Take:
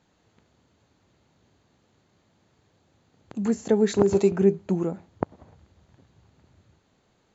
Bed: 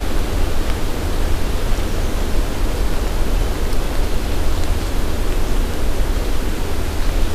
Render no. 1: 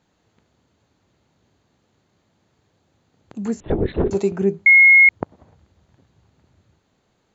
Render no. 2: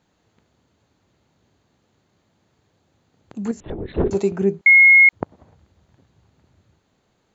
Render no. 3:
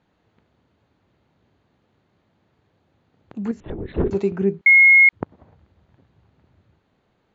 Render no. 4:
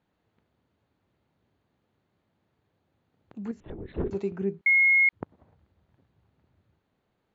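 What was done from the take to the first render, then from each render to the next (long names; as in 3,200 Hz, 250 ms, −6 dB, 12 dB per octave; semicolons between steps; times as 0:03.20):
0:03.60–0:04.11: linear-prediction vocoder at 8 kHz whisper; 0:04.66–0:05.09: beep over 2,160 Hz −6.5 dBFS
0:03.51–0:03.94: downward compressor 3 to 1, threshold −28 dBFS; 0:04.61–0:05.13: high-pass filter 860 Hz
low-pass filter 3,300 Hz 12 dB per octave; dynamic equaliser 670 Hz, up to −5 dB, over −37 dBFS, Q 1.3
level −9 dB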